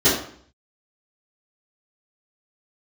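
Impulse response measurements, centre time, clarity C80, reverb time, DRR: 43 ms, 8.0 dB, 0.55 s, -17.0 dB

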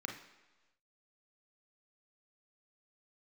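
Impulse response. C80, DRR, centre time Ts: 10.5 dB, 2.5 dB, 25 ms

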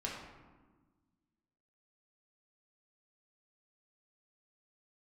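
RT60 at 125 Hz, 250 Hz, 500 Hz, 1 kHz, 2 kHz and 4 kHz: 1.9, 2.0, 1.4, 1.3, 1.0, 0.70 s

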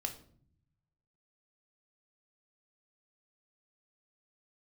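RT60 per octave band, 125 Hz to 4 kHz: 1.6, 1.1, 0.60, 0.50, 0.40, 0.40 s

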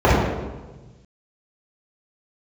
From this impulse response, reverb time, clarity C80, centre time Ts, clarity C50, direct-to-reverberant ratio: 1.2 s, 1.0 dB, 96 ms, -1.5 dB, -10.0 dB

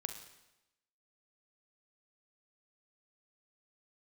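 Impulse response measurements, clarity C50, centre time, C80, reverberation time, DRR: 8.0 dB, 20 ms, 10.5 dB, 0.95 s, 6.5 dB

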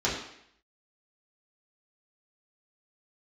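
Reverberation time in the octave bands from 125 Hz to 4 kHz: 0.60, 0.70, 0.70, 0.70, 0.75, 0.70 s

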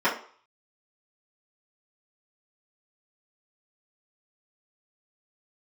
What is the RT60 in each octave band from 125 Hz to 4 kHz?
0.30, 0.35, 0.45, 0.50, 0.45, 0.45 s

